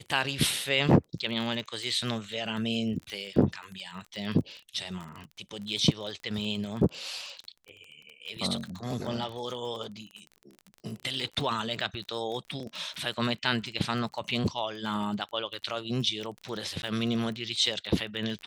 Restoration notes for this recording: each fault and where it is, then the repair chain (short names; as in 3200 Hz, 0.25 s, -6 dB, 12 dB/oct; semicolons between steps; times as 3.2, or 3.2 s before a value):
crackle 26/s -35 dBFS
16.82–16.83 gap 11 ms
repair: de-click; interpolate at 16.82, 11 ms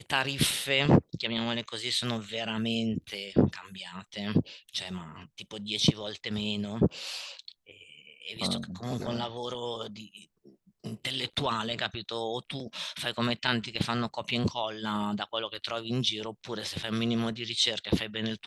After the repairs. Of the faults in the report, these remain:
none